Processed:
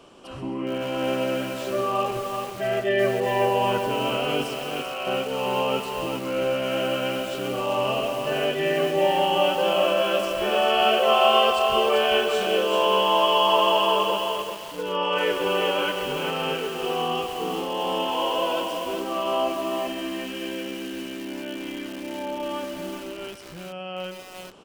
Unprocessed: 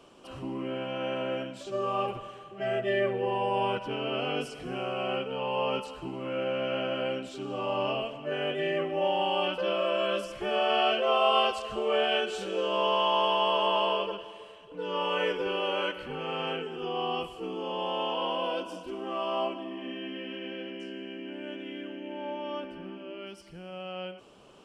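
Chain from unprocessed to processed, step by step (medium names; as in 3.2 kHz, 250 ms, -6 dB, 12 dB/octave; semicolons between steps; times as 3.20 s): 4.43–5.07 s: high-pass 980 Hz 6 dB/octave; feedback delay 134 ms, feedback 33%, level -13 dB; bit-crushed delay 391 ms, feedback 35%, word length 7-bit, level -4 dB; trim +5 dB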